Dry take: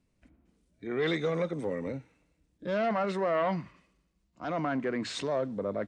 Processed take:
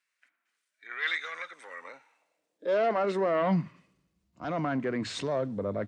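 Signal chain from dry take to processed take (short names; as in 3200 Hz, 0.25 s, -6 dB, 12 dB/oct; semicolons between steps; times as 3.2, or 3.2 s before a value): high-pass sweep 1600 Hz -> 90 Hz, 1.6–4.11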